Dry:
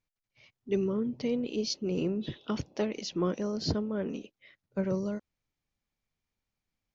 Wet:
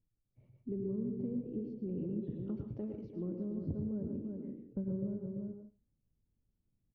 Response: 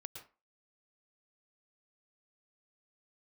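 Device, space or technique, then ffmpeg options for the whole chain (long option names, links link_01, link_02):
television next door: -filter_complex "[0:a]asettb=1/sr,asplit=3[link_01][link_02][link_03];[link_01]atrim=end=1.874[link_04];[link_02]atrim=start=1.87:end=3.19,asetpts=PTS-STARTPTS,afade=type=in:duration=0.004:curve=qsin,afade=type=out:start_time=1.316:duration=0.004:curve=qsin,equalizer=frequency=5200:width_type=o:width=2.9:gain=14.5[link_05];[link_03]atrim=start=3.186[link_06];[link_04][link_05]acrossfade=duration=0.004:curve1=hsin:curve2=qsin[link_07];[link_07][link_06]acrossfade=duration=0.004:curve1=qsin:curve2=hsin,asplit=2[link_08][link_09];[link_09]adelay=338.2,volume=-10dB,highshelf=frequency=4000:gain=-7.61[link_10];[link_08][link_10]amix=inputs=2:normalize=0,acompressor=threshold=-44dB:ratio=3,lowpass=280[link_11];[1:a]atrim=start_sample=2205[link_12];[link_11][link_12]afir=irnorm=-1:irlink=0,volume=13dB"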